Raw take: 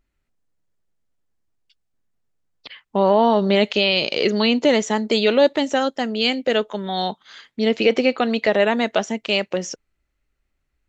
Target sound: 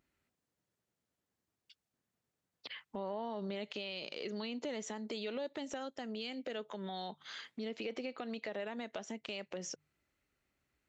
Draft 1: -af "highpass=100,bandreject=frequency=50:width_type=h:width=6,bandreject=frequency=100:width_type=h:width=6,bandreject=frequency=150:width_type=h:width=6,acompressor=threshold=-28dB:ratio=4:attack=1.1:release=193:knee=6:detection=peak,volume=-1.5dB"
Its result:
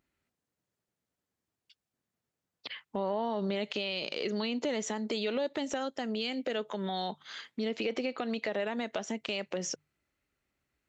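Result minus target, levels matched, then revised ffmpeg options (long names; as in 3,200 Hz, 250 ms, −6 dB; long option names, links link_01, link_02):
downward compressor: peak gain reduction −8 dB
-af "highpass=100,bandreject=frequency=50:width_type=h:width=6,bandreject=frequency=100:width_type=h:width=6,bandreject=frequency=150:width_type=h:width=6,acompressor=threshold=-38.5dB:ratio=4:attack=1.1:release=193:knee=6:detection=peak,volume=-1.5dB"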